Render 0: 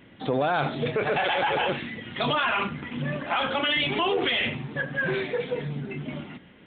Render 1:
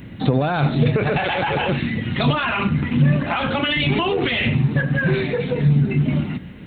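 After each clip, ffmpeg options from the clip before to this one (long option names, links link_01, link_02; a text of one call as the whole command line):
ffmpeg -i in.wav -af "equalizer=frequency=3300:width=7.6:gain=-10,acompressor=threshold=-30dB:ratio=2,bass=frequency=250:gain=14,treble=frequency=4000:gain=14,volume=7dB" out.wav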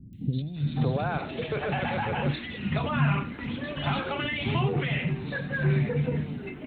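ffmpeg -i in.wav -filter_complex "[0:a]acrossover=split=290|3200[link_01][link_02][link_03];[link_03]adelay=130[link_04];[link_02]adelay=560[link_05];[link_01][link_05][link_04]amix=inputs=3:normalize=0,volume=-8dB" out.wav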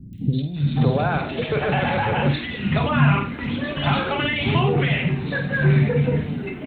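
ffmpeg -i in.wav -filter_complex "[0:a]asplit=2[link_01][link_02];[link_02]adelay=50,volume=-9dB[link_03];[link_01][link_03]amix=inputs=2:normalize=0,volume=7dB" out.wav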